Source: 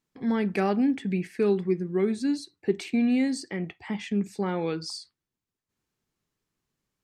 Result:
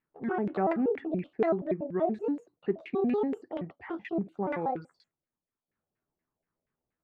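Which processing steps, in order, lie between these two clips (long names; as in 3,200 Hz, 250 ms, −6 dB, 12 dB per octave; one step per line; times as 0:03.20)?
pitch shifter gated in a rhythm +8.5 semitones, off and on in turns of 95 ms
auto-filter low-pass saw down 4.2 Hz 570–2,100 Hz
level −5 dB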